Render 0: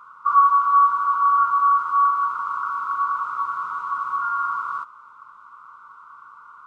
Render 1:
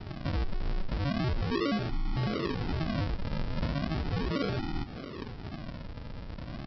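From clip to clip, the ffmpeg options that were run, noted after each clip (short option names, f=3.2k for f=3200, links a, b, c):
-af "acompressor=threshold=-31dB:ratio=2,alimiter=level_in=5dB:limit=-24dB:level=0:latency=1:release=125,volume=-5dB,aresample=11025,acrusher=samples=20:mix=1:aa=0.000001:lfo=1:lforange=20:lforate=0.37,aresample=44100,volume=5.5dB"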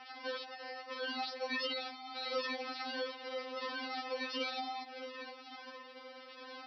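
-af "highpass=f=420:w=0.5412,highpass=f=420:w=1.3066,afftfilt=real='re*3.46*eq(mod(b,12),0)':imag='im*3.46*eq(mod(b,12),0)':win_size=2048:overlap=0.75,volume=3dB"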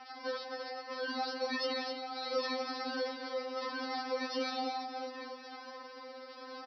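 -filter_complex "[0:a]aecho=1:1:3.7:0.56,asplit=2[a][b];[b]aecho=0:1:172|256.6:0.251|0.447[c];[a][c]amix=inputs=2:normalize=0"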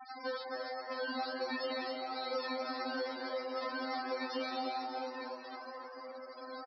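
-filter_complex "[0:a]acrossover=split=1400|3600[a][b][c];[a]acompressor=threshold=-37dB:ratio=4[d];[b]acompressor=threshold=-45dB:ratio=4[e];[c]acompressor=threshold=-52dB:ratio=4[f];[d][e][f]amix=inputs=3:normalize=0,afftfilt=real='re*gte(hypot(re,im),0.00708)':imag='im*gte(hypot(re,im),0.00708)':win_size=1024:overlap=0.75,asplit=6[g][h][i][j][k][l];[h]adelay=299,afreqshift=110,volume=-12.5dB[m];[i]adelay=598,afreqshift=220,volume=-19.2dB[n];[j]adelay=897,afreqshift=330,volume=-26dB[o];[k]adelay=1196,afreqshift=440,volume=-32.7dB[p];[l]adelay=1495,afreqshift=550,volume=-39.5dB[q];[g][m][n][o][p][q]amix=inputs=6:normalize=0,volume=1.5dB"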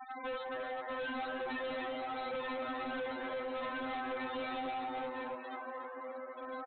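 -af "bandreject=f=660:w=15,aresample=8000,asoftclip=type=hard:threshold=-39dB,aresample=44100,volume=3dB"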